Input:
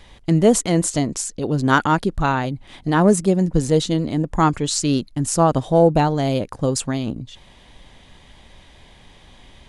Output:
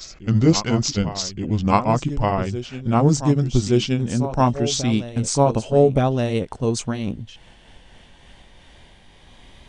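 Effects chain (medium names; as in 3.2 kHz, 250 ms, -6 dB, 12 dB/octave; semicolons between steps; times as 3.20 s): pitch bend over the whole clip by -7 st ending unshifted; reverse echo 1171 ms -12 dB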